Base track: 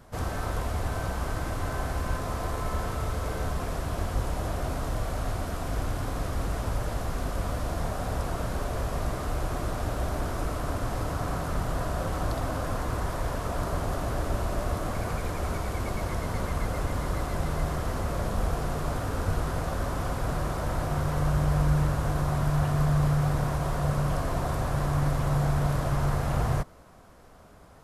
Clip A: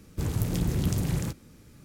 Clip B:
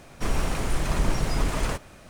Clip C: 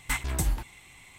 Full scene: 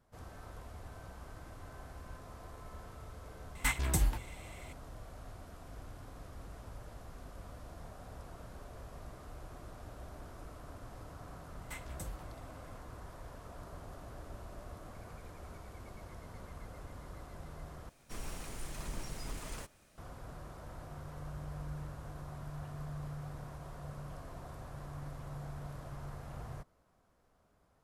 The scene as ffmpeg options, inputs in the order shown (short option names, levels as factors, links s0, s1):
-filter_complex "[3:a]asplit=2[s0][s1];[0:a]volume=0.112[s2];[2:a]aemphasis=mode=production:type=cd[s3];[s2]asplit=2[s4][s5];[s4]atrim=end=17.894[s6];[s3]atrim=end=2.09,asetpts=PTS-STARTPTS,volume=0.133[s7];[s5]atrim=start=19.976[s8];[s0]atrim=end=1.18,asetpts=PTS-STARTPTS,volume=0.75,afade=t=in:d=0.004:c=hsin,afade=t=out:st=1.176:d=0.004:c=hsin,adelay=3550[s9];[s1]atrim=end=1.18,asetpts=PTS-STARTPTS,volume=0.141,afade=t=in:d=0.004:c=hsin,afade=t=out:st=1.176:d=0.004:c=hsin,adelay=11610[s10];[s6][s7]acrossfade=d=0.004:c1=hsin:c2=hsin[s11];[s11][s8]acrossfade=d=0.004:c1=hsin:c2=hsin[s12];[s12][s9][s10]amix=inputs=3:normalize=0"